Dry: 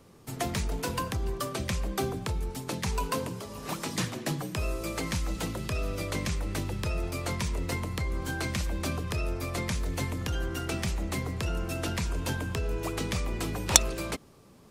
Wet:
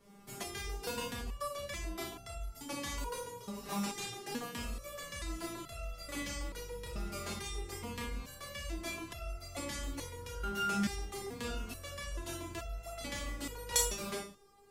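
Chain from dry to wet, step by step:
on a send at −1 dB: convolution reverb RT60 0.35 s, pre-delay 26 ms
on the sum: step-sequenced resonator 2.3 Hz 200–680 Hz
level +7 dB

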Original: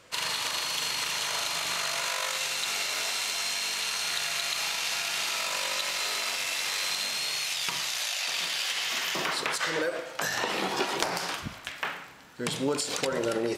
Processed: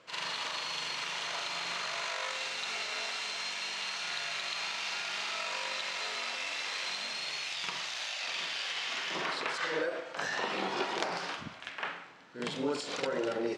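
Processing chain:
running median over 3 samples
Bessel high-pass filter 170 Hz, order 2
high-frequency loss of the air 100 metres
on a send: backwards echo 46 ms −6 dB
on the sum: level −4 dB

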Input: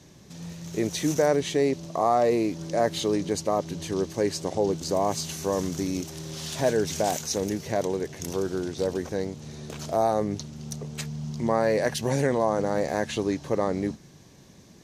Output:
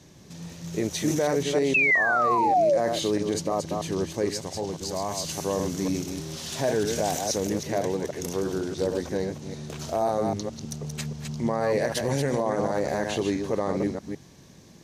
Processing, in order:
delay that plays each chunk backwards 159 ms, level −5.5 dB
0:01.74–0:02.78: sound drawn into the spectrogram fall 520–2,700 Hz −17 dBFS
0:04.30–0:05.25: parametric band 400 Hz −8 dB 2.5 octaves
brickwall limiter −15 dBFS, peak gain reduction 8.5 dB

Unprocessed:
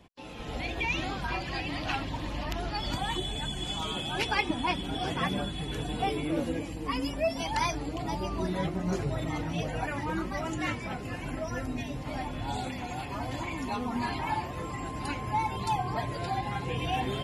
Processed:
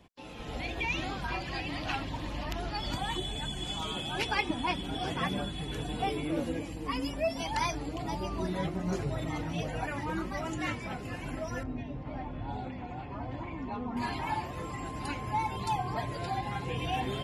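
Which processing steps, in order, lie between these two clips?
0:11.63–0:13.97: head-to-tape spacing loss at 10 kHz 34 dB
level −2 dB

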